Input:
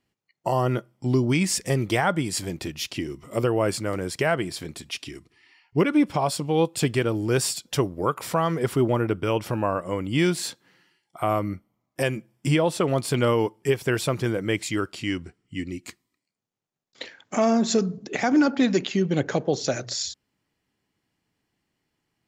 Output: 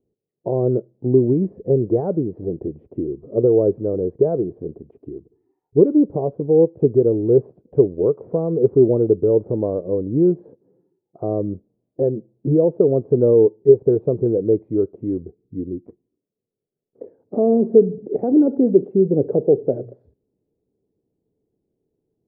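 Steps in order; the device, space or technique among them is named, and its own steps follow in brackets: under water (low-pass 570 Hz 24 dB/octave; peaking EQ 430 Hz +11.5 dB 0.59 oct); trim +2 dB

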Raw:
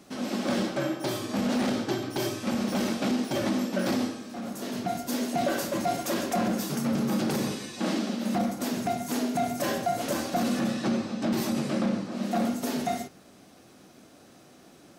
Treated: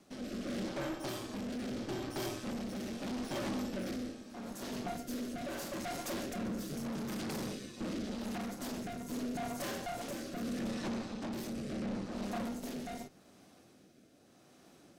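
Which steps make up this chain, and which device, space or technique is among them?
overdriven rotary cabinet (valve stage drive 32 dB, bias 0.8; rotary cabinet horn 0.8 Hz); trim -1.5 dB

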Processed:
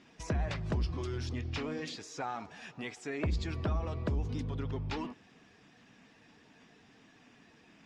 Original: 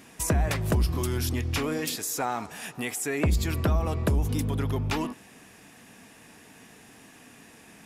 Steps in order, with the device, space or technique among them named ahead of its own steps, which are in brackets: clip after many re-uploads (low-pass 5.6 kHz 24 dB/octave; coarse spectral quantiser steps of 15 dB); trim -8 dB

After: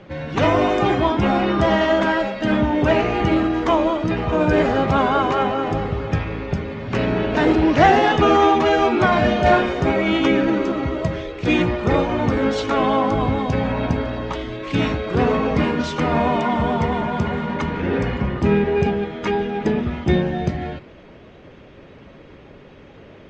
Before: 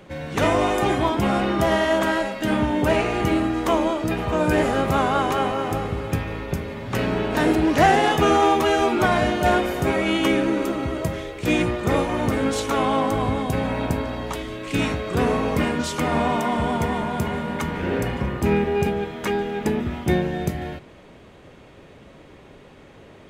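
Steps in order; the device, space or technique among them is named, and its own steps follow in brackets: clip after many re-uploads (low-pass 6.6 kHz 24 dB/octave; coarse spectral quantiser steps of 15 dB); distance through air 82 m; 9.20–9.69 s: doubling 38 ms -5 dB; trim +3.5 dB

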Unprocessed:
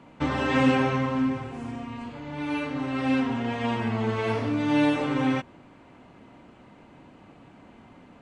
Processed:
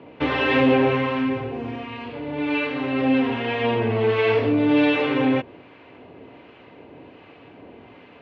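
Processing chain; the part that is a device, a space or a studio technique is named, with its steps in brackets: guitar amplifier with harmonic tremolo (harmonic tremolo 1.3 Hz, depth 50%, crossover 880 Hz; saturation -19.5 dBFS, distortion -16 dB; cabinet simulation 93–4000 Hz, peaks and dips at 150 Hz -6 dB, 210 Hz -9 dB, 440 Hz +7 dB, 870 Hz -3 dB, 1.3 kHz -5 dB, 2.6 kHz +4 dB); trim +9 dB

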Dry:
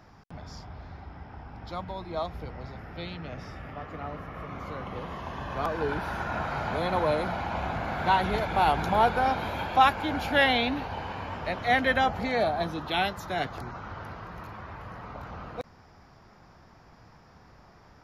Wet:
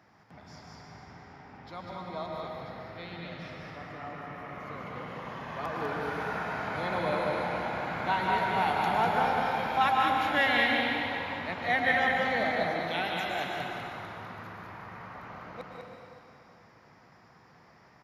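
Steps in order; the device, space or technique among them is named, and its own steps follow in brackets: stadium PA (high-pass 130 Hz 12 dB/octave; peaking EQ 2 kHz +5.5 dB 0.55 oct; loudspeakers at several distances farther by 51 m -12 dB, 68 m -4 dB; reverberation RT60 2.6 s, pre-delay 102 ms, DRR 0.5 dB); trim -7 dB

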